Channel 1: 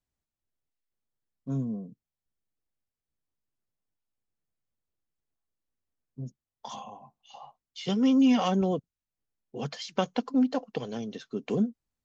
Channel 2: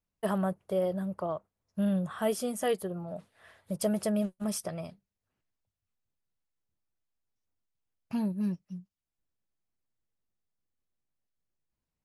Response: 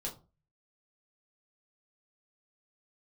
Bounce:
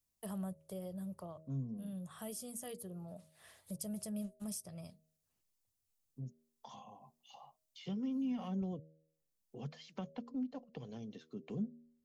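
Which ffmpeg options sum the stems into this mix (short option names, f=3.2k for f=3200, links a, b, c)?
-filter_complex "[0:a]acrossover=split=3100[a][b];[b]acompressor=threshold=-48dB:ratio=4:attack=1:release=60[c];[a][c]amix=inputs=2:normalize=0,volume=-5.5dB,asplit=2[d][e];[1:a]bass=f=250:g=0,treble=f=4k:g=15,volume=-5dB[f];[e]apad=whole_len=531124[g];[f][g]sidechaincompress=threshold=-43dB:ratio=10:attack=16:release=808[h];[d][h]amix=inputs=2:normalize=0,equalizer=f=1.5k:t=o:w=0.39:g=-4,bandreject=f=79.12:t=h:w=4,bandreject=f=158.24:t=h:w=4,bandreject=f=237.36:t=h:w=4,bandreject=f=316.48:t=h:w=4,bandreject=f=395.6:t=h:w=4,bandreject=f=474.72:t=h:w=4,bandreject=f=553.84:t=h:w=4,bandreject=f=632.96:t=h:w=4,acrossover=split=180[i][j];[j]acompressor=threshold=-56dB:ratio=2[k];[i][k]amix=inputs=2:normalize=0"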